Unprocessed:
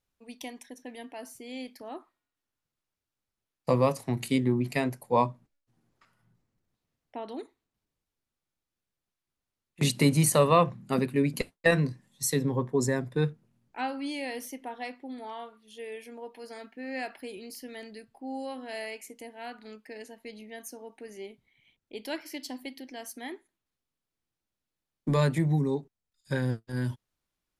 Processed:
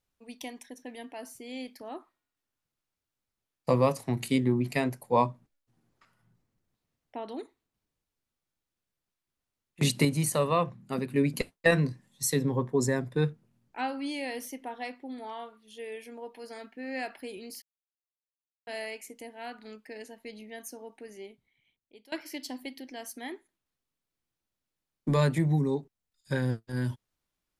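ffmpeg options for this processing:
ffmpeg -i in.wav -filter_complex "[0:a]asplit=6[link_01][link_02][link_03][link_04][link_05][link_06];[link_01]atrim=end=10.052[link_07];[link_02]atrim=start=10.048:end=11.102,asetpts=PTS-STARTPTS,volume=-5dB[link_08];[link_03]atrim=start=11.098:end=17.62,asetpts=PTS-STARTPTS,afade=type=out:start_time=6.518:duration=0.004:curve=hsin[link_09];[link_04]atrim=start=17.62:end=18.67,asetpts=PTS-STARTPTS,volume=0[link_10];[link_05]atrim=start=18.67:end=22.12,asetpts=PTS-STARTPTS,afade=type=in:duration=0.004:curve=hsin,afade=type=out:start_time=2.17:duration=1.28:silence=0.0841395[link_11];[link_06]atrim=start=22.12,asetpts=PTS-STARTPTS,afade=type=in:duration=0.004:curve=hsin:silence=0.0841395[link_12];[link_07][link_08]acrossfade=duration=0.004:curve1=hsin:curve2=hsin[link_13];[link_09][link_10][link_11][link_12]concat=n=4:v=0:a=1[link_14];[link_13][link_14]acrossfade=duration=0.004:curve1=hsin:curve2=hsin" out.wav

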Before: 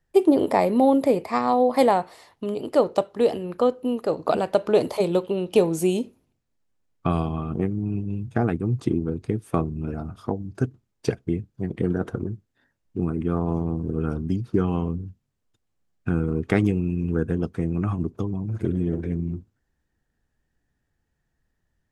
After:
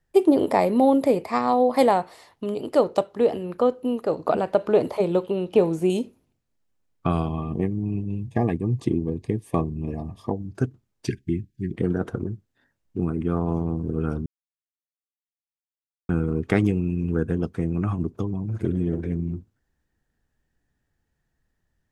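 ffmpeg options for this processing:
ffmpeg -i in.wav -filter_complex "[0:a]asettb=1/sr,asplit=3[link_01][link_02][link_03];[link_01]atrim=end=3.074[link_04];[link_02]atrim=start=3.07:end=5.9,asetpts=PTS-STARTPTS,afade=type=in:duration=0.004:curve=qsin,afade=type=out:start_time=2.826:duration=0.004:curve=qsin,acrossover=split=2600[link_05][link_06];[link_06]acompressor=threshold=-48dB:ratio=4:attack=1:release=60[link_07];[link_05][link_07]amix=inputs=2:normalize=0[link_08];[link_03]atrim=start=5.896[link_09];[link_04][link_08]acrossfade=duration=0.004:curve1=hsin:curve2=qsin[link_10];[link_10][link_09]acrossfade=duration=0.004:curve1=qsin:curve2=hsin,asettb=1/sr,asplit=3[link_11][link_12][link_13];[link_11]atrim=end=7.284[link_14];[link_12]atrim=start=7.28:end=10.32,asetpts=PTS-STARTPTS,afade=type=in:duration=0.004:curve=qsin,afade=type=out:start_time=3.036:duration=0.004:curve=qsin,asuperstop=centerf=1400:order=20:qfactor=3.5[link_15];[link_13]atrim=start=10.316[link_16];[link_14][link_15]acrossfade=duration=0.004:curve1=hsin:curve2=qsin[link_17];[link_17][link_16]acrossfade=duration=0.004:curve1=qsin:curve2=hsin,asettb=1/sr,asplit=3[link_18][link_19][link_20];[link_18]atrim=end=11.074[link_21];[link_19]atrim=start=11.07:end=11.74,asetpts=PTS-STARTPTS,afade=type=in:duration=0.004:curve=qsin,afade=type=out:start_time=0.666:duration=0.004:curve=qsin,asuperstop=centerf=800:order=20:qfactor=0.65[link_22];[link_20]atrim=start=11.736[link_23];[link_21][link_22]acrossfade=duration=0.004:curve1=hsin:curve2=qsin[link_24];[link_24][link_23]acrossfade=duration=0.004:curve1=qsin:curve2=hsin,asplit=3[link_25][link_26][link_27];[link_25]atrim=end=14.26,asetpts=PTS-STARTPTS,afade=type=out:start_time=14.256:duration=0.004:curve=hsin[link_28];[link_26]atrim=start=14.26:end=16.09,asetpts=PTS-STARTPTS,volume=0[link_29];[link_27]atrim=start=16.09,asetpts=PTS-STARTPTS,afade=type=in:duration=0.004:curve=hsin[link_30];[link_28][link_29][link_30]concat=n=3:v=0:a=1" out.wav

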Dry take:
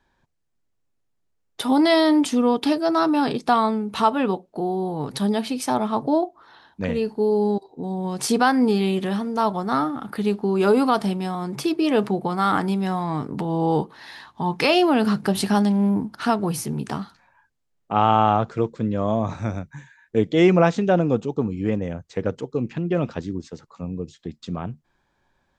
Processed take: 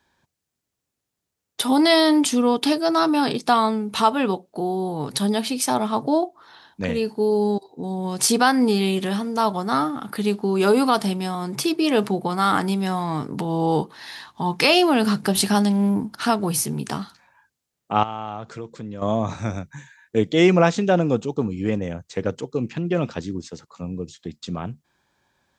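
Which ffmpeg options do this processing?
ffmpeg -i in.wav -filter_complex "[0:a]asettb=1/sr,asplit=3[link_01][link_02][link_03];[link_01]atrim=end=18.034[link_04];[link_02]atrim=start=18.03:end=19.02,asetpts=PTS-STARTPTS,afade=type=in:duration=0.004:curve=qsin,afade=type=out:start_time=0.986:duration=0.004:curve=qsin,acompressor=threshold=-34dB:ratio=2.5:attack=3.2:release=140:knee=1:detection=peak[link_05];[link_03]atrim=start=19.016[link_06];[link_04][link_05]acrossfade=duration=0.004:curve1=hsin:curve2=qsin[link_07];[link_07][link_06]acrossfade=duration=0.004:curve1=qsin:curve2=hsin,highpass=65,highshelf=frequency=3200:gain=9" out.wav

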